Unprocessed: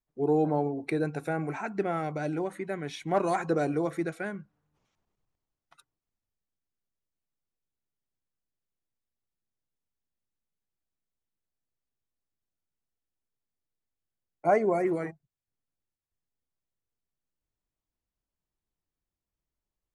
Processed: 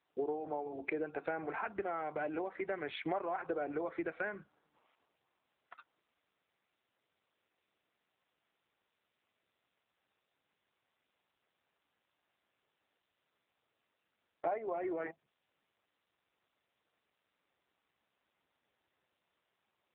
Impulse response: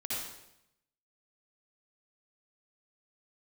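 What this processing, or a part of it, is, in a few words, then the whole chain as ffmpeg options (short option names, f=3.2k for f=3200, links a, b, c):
voicemail: -filter_complex "[0:a]asplit=3[a][b][c];[a]afade=t=out:st=2.21:d=0.02[d];[b]lowpass=f=8.7k:w=0.5412,lowpass=f=8.7k:w=1.3066,afade=t=in:st=2.21:d=0.02,afade=t=out:st=2.78:d=0.02[e];[c]afade=t=in:st=2.78:d=0.02[f];[d][e][f]amix=inputs=3:normalize=0,highpass=440,lowpass=3k,acompressor=threshold=-44dB:ratio=8,volume=10dB" -ar 8000 -c:a libopencore_amrnb -b:a 7400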